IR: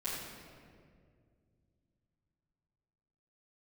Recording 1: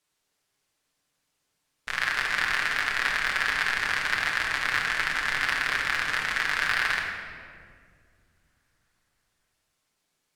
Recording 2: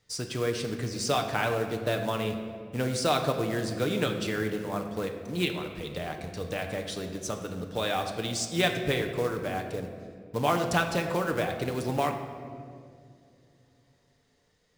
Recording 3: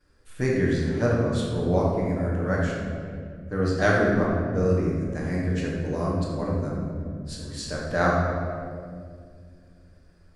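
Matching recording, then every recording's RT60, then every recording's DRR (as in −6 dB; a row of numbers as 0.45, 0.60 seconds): 3; 2.1, 2.3, 2.1 seconds; −2.5, 4.0, −12.0 decibels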